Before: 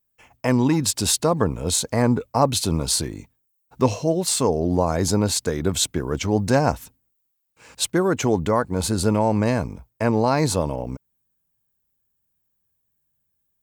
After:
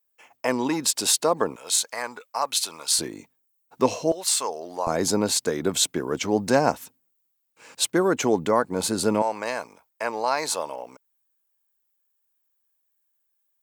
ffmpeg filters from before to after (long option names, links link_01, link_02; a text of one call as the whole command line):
ffmpeg -i in.wav -af "asetnsamples=nb_out_samples=441:pad=0,asendcmd='1.56 highpass f 1100;2.99 highpass f 270;4.12 highpass f 870;4.87 highpass f 230;9.22 highpass f 720',highpass=380" out.wav